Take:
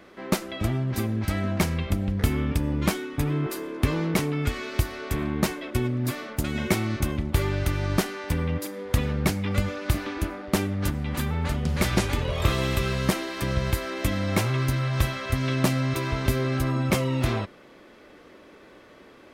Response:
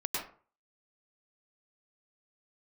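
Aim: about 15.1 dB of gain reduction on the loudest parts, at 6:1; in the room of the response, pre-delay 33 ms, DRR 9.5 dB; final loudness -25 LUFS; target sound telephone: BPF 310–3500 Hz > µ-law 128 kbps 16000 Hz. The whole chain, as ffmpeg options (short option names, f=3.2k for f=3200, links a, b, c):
-filter_complex "[0:a]acompressor=threshold=-35dB:ratio=6,asplit=2[a][b];[1:a]atrim=start_sample=2205,adelay=33[c];[b][c]afir=irnorm=-1:irlink=0,volume=-14.5dB[d];[a][d]amix=inputs=2:normalize=0,highpass=310,lowpass=3.5k,volume=18dB" -ar 16000 -c:a pcm_mulaw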